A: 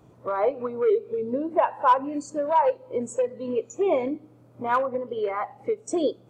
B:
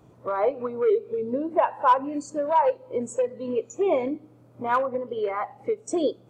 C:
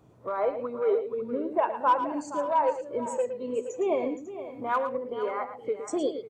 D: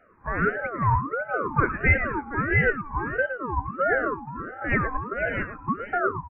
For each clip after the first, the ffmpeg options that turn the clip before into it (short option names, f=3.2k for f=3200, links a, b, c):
-af anull
-af "aecho=1:1:112|470|548:0.316|0.224|0.15,volume=-4dB"
-af "afftfilt=real='re*between(b*sr/4096,230,2000)':imag='im*between(b*sr/4096,230,2000)':win_size=4096:overlap=0.75,aeval=exprs='val(0)*sin(2*PI*800*n/s+800*0.35/1.5*sin(2*PI*1.5*n/s))':c=same,volume=6dB"